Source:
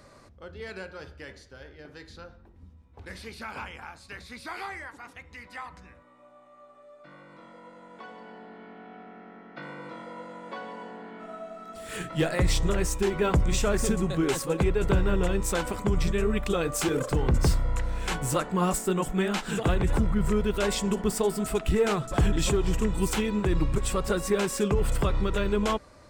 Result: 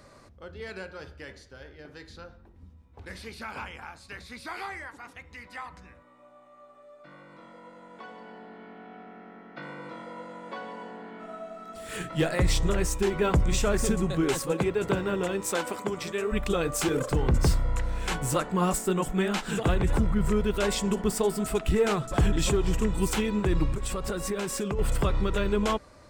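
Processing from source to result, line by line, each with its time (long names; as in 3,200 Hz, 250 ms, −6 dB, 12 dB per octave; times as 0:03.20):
0:14.51–0:16.31: high-pass filter 130 Hz → 360 Hz
0:23.72–0:24.79: downward compressor, threshold −26 dBFS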